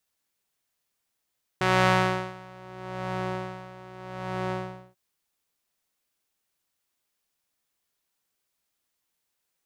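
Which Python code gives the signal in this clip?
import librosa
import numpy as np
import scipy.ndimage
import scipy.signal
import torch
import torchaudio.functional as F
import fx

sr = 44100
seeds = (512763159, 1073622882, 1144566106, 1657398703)

y = fx.sub_patch_tremolo(sr, seeds[0], note=47, wave='triangle', wave2='saw', interval_st=7, detune_cents=10, level2_db=-1, sub_db=-15.0, noise_db=-26.5, kind='bandpass', cutoff_hz=540.0, q=0.72, env_oct=1.5, env_decay_s=1.1, env_sustain_pct=50, attack_ms=1.8, decay_s=0.72, sustain_db=-15.0, release_s=0.43, note_s=2.91, lfo_hz=0.79, tremolo_db=15.0)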